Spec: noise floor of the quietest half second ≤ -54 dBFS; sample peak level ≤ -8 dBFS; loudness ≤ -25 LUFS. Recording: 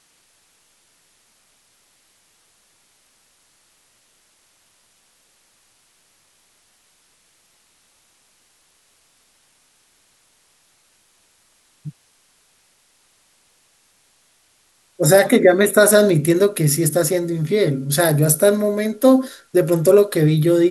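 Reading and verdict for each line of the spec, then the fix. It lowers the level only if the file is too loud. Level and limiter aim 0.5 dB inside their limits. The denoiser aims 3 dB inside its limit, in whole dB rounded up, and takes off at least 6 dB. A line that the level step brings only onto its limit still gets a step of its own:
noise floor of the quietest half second -60 dBFS: pass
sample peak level -2.0 dBFS: fail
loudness -16.0 LUFS: fail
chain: trim -9.5 dB

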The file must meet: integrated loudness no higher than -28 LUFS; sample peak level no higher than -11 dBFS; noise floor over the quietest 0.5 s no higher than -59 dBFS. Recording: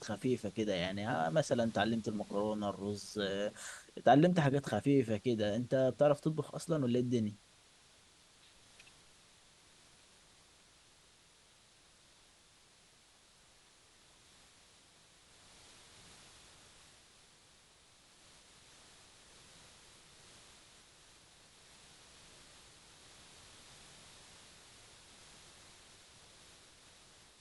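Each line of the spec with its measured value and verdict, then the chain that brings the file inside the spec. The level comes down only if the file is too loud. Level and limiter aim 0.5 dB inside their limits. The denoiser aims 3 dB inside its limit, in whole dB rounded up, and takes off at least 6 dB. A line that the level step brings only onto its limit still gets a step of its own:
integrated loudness -34.0 LUFS: pass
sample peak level -14.0 dBFS: pass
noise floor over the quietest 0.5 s -65 dBFS: pass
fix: none needed

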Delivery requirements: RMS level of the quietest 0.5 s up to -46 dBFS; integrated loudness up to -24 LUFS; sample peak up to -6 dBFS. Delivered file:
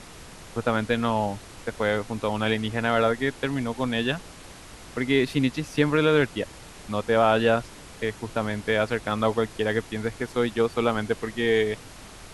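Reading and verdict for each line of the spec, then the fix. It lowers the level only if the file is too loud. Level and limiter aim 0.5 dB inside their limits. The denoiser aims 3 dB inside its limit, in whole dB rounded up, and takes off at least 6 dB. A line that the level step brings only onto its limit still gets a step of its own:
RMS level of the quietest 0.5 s -44 dBFS: fail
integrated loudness -25.5 LUFS: pass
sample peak -6.5 dBFS: pass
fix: noise reduction 6 dB, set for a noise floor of -44 dBFS

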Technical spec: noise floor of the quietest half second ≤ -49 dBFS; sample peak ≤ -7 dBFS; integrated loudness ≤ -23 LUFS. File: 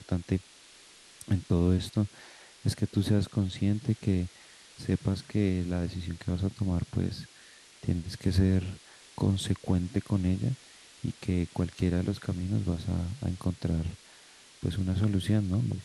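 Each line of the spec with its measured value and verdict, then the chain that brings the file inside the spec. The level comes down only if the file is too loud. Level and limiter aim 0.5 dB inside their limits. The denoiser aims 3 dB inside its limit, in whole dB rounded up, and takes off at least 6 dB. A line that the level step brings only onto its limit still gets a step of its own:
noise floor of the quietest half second -55 dBFS: pass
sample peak -13.5 dBFS: pass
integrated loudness -30.5 LUFS: pass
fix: none needed

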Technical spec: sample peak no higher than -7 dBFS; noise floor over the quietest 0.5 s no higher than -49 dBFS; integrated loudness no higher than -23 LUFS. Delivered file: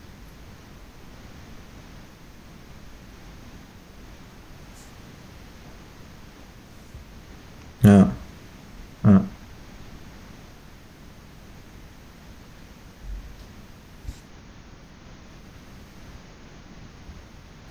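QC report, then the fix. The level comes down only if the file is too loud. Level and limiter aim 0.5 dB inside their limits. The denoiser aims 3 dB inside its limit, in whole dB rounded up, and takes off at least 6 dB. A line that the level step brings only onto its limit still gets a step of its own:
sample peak -5.0 dBFS: fail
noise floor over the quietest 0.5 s -46 dBFS: fail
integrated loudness -18.5 LUFS: fail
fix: trim -5 dB

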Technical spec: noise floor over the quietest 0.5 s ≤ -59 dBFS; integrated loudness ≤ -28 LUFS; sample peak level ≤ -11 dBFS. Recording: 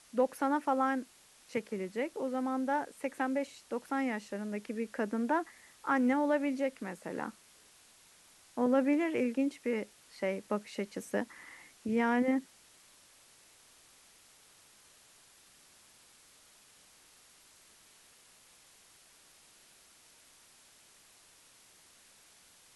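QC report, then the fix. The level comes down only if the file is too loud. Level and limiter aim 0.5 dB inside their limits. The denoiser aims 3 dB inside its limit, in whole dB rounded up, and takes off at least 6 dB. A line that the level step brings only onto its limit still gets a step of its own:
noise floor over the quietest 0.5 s -61 dBFS: pass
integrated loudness -33.5 LUFS: pass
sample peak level -16.5 dBFS: pass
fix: none needed

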